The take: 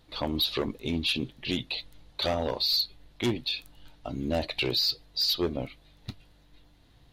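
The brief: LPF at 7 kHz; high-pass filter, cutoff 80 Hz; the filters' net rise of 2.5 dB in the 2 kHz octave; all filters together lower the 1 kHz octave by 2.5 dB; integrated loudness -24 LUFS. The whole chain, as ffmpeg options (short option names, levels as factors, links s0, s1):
-af "highpass=80,lowpass=7000,equalizer=f=1000:t=o:g=-4.5,equalizer=f=2000:t=o:g=4.5,volume=1.68"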